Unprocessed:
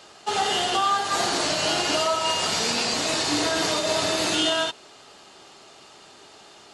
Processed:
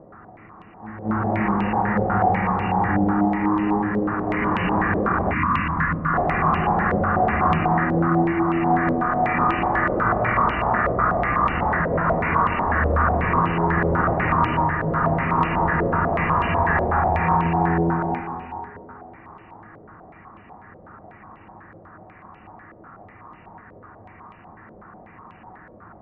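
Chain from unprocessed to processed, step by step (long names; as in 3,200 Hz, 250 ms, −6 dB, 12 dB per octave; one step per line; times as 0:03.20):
change of speed 0.259×
echo ahead of the sound 221 ms −13 dB
convolution reverb RT60 3.1 s, pre-delay 63 ms, DRR 5 dB
gain on a spectral selection 0:05.33–0:06.14, 330–930 Hz −14 dB
high-frequency loss of the air 310 metres
low-pass on a step sequencer 8.1 Hz 550–2,800 Hz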